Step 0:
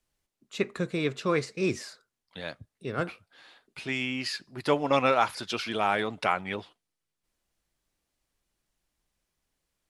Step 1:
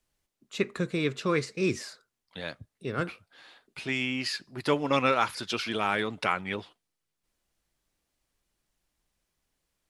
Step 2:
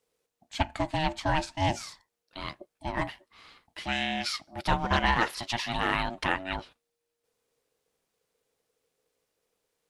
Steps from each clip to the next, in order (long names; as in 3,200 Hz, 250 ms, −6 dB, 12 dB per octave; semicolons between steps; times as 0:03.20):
dynamic equaliser 710 Hz, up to −7 dB, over −41 dBFS, Q 1.9; level +1 dB
ring modulation 470 Hz; highs frequency-modulated by the lows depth 0.18 ms; level +3 dB